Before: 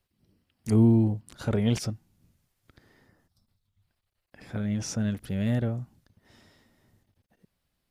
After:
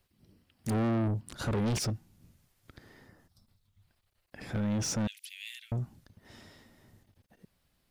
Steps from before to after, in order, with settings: 5.07–5.72 s: elliptic high-pass 2.4 kHz, stop band 80 dB; saturation -31.5 dBFS, distortion -4 dB; trim +4.5 dB

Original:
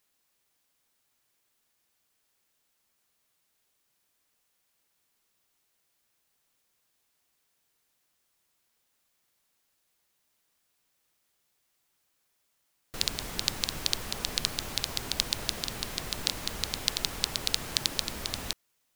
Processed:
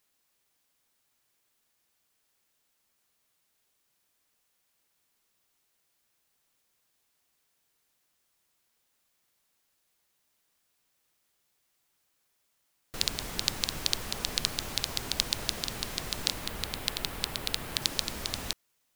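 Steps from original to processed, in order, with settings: 16.31–17.82 s: dynamic bell 6.2 kHz, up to -7 dB, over -48 dBFS, Q 1.1

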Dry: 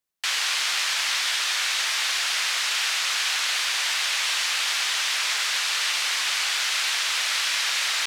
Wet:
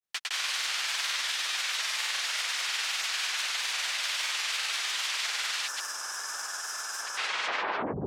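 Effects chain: tape stop on the ending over 1.13 s; time-frequency box 5.71–7.12 s, 1.8–4.9 kHz -17 dB; granulator, pitch spread up and down by 0 st; trim -5 dB

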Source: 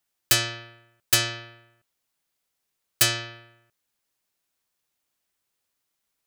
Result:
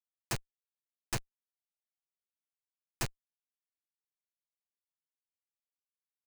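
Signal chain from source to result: low-pass 11 kHz 12 dB/octave; resonant high shelf 4.3 kHz +9.5 dB, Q 1.5; compression 2:1, threshold -17 dBFS, peak gain reduction 5.5 dB; Schmitt trigger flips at -12 dBFS; trim -1 dB

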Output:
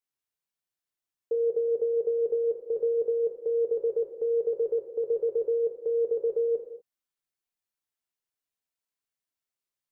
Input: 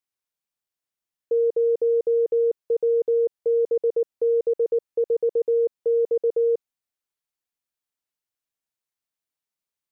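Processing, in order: gated-style reverb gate 270 ms falling, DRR 1 dB; trim -5 dB

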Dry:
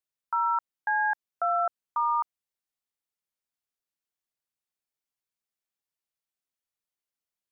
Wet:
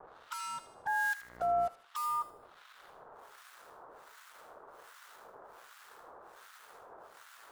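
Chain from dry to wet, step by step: expander on every frequency bin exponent 3; recorder AGC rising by 31 dB/s; spectral noise reduction 9 dB; band noise 380–1500 Hz -62 dBFS; in parallel at -12 dB: sine folder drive 14 dB, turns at -29.5 dBFS; 1.02–1.67 s: on the sum: mains buzz 60 Hz, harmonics 36, -49 dBFS -2 dB/octave; hysteresis with a dead band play -48.5 dBFS; harmonic tremolo 1.3 Hz, depth 100%, crossover 1.3 kHz; on a send: feedback echo behind a high-pass 78 ms, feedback 37%, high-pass 1.7 kHz, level -9.5 dB; on the sum: tape noise reduction on one side only encoder only

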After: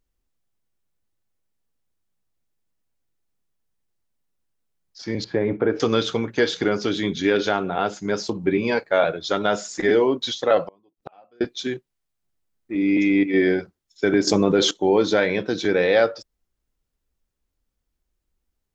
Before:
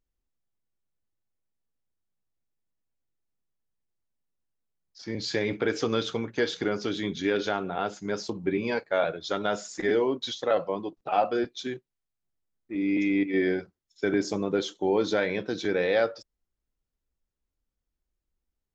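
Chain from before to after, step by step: 5.24–5.80 s: low-pass 1.2 kHz 12 dB/octave; 10.62–11.41 s: inverted gate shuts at -28 dBFS, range -34 dB; 14.27–14.71 s: level flattener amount 70%; trim +6.5 dB

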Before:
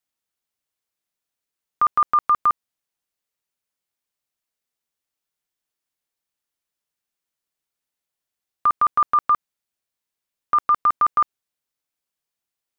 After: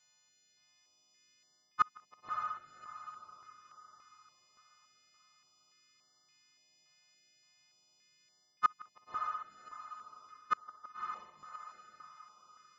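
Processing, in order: partials quantised in pitch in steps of 3 st; high-pass 72 Hz 12 dB/octave; peaking EQ 150 Hz +8.5 dB 0.9 oct; hum notches 50/100/150/200/250/300 Hz; reverse; compression 16:1, threshold -26 dBFS, peak gain reduction 13.5 dB; reverse; inverted gate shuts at -24 dBFS, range -37 dB; on a send: echo that smears into a reverb 589 ms, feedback 42%, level -4.5 dB; on the sum: resampled via 16 kHz; step-sequenced notch 3.5 Hz 320–2500 Hz; trim +9.5 dB

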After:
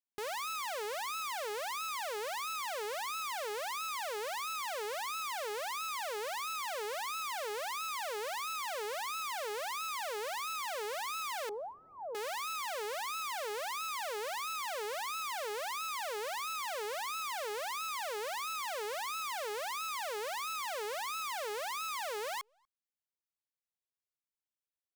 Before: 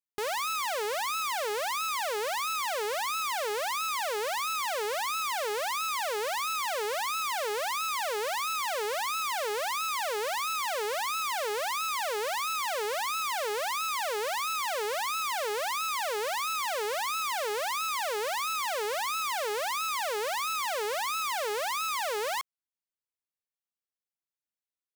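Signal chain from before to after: 11.49–12.15 s: steep low-pass 870 Hz 36 dB/octave; speakerphone echo 240 ms, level -29 dB; trim -7 dB

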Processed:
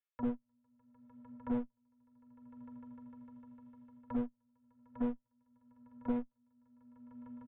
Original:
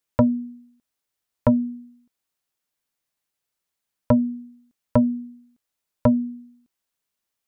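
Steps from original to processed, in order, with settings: bass shelf 290 Hz -10.5 dB; comb 2.3 ms, depth 78%; reverse; compression 16:1, threshold -33 dBFS, peak gain reduction 17 dB; reverse; graphic EQ 250/500/2000 Hz +4/-9/+5 dB; on a send: echo with a slow build-up 151 ms, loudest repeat 5, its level -13 dB; on the sum: simulated room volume 3400 m³, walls furnished, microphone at 1.8 m; gate -26 dBFS, range -55 dB; peak limiter -33.5 dBFS, peak gain reduction 7.5 dB; one-sided clip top -57.5 dBFS, bottom -36.5 dBFS; resampled via 8 kHz; three bands compressed up and down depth 100%; trim +17 dB

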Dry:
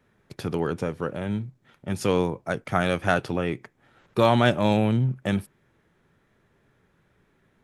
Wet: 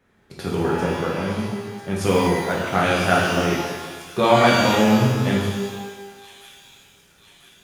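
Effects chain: hum notches 60/120/180 Hz; feedback echo behind a high-pass 997 ms, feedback 53%, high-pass 4.4 kHz, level -7.5 dB; pitch-shifted reverb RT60 1.3 s, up +12 st, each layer -8 dB, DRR -4.5 dB

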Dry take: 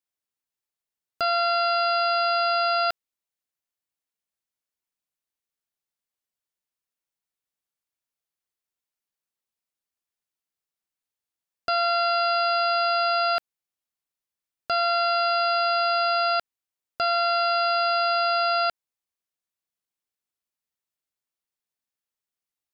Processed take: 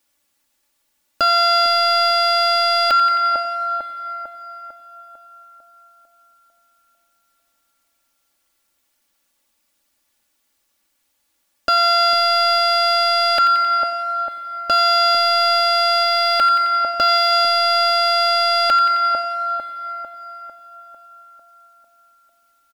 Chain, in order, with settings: 16.03–17.32 s: companding laws mixed up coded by A; two-band feedback delay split 1.2 kHz, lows 449 ms, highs 88 ms, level -12 dB; in parallel at -8 dB: overload inside the chain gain 27 dB; on the sum: comb 3.5 ms, depth 87%; on a send at -17 dB: high-pass 220 Hz 12 dB/octave + reverberation RT60 4.2 s, pre-delay 77 ms; on the sum: loudness maximiser +23.5 dB; trim -8 dB

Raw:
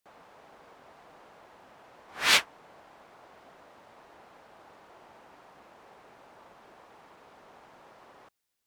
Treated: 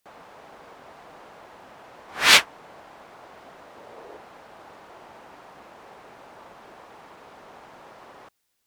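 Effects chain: 3.75–4.16 s: peaking EQ 450 Hz +6 dB -> +12.5 dB 0.77 oct; trim +7.5 dB

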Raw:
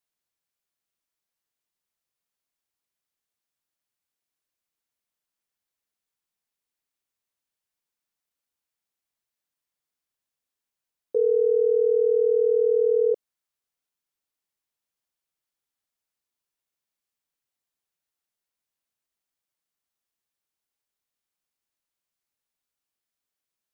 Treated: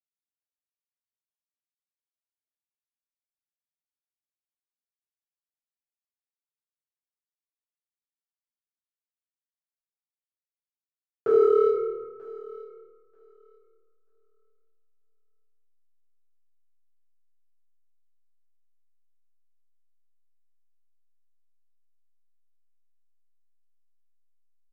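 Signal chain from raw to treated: Doppler pass-by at 10.13 s, 13 m/s, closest 12 m; band-stop 520 Hz, Q 12; gate with hold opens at -18 dBFS; tape speed -4%; comb 6.3 ms, depth 44%; power-law waveshaper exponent 3; peaking EQ 410 Hz +4.5 dB 0.31 oct; hysteresis with a dead band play -47 dBFS; thinning echo 937 ms, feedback 17%, high-pass 280 Hz, level -19.5 dB; reverberation RT60 1.4 s, pre-delay 4 ms, DRR -10.5 dB; trim -4 dB

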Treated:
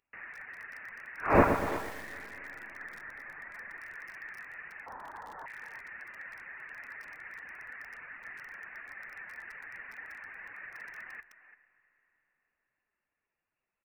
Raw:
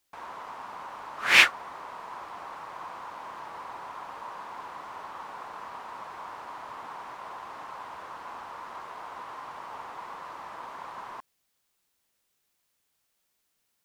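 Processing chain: 2.78–3.81 s: tilt EQ +2 dB/octave; 4.86–5.46 s: resonant high-pass 1.9 kHz, resonance Q 8.1; frequency inversion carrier 2.8 kHz; speakerphone echo 340 ms, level -12 dB; flange 0.79 Hz, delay 2.6 ms, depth 5.8 ms, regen -81%; reverb removal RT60 0.68 s; on a send at -18 dB: reverberation RT60 4.0 s, pre-delay 60 ms; on the sum: flange 0.39 Hz, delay 2.1 ms, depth 9.3 ms, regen -85%; bit-crushed delay 121 ms, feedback 55%, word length 8-bit, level -7 dB; trim +5.5 dB

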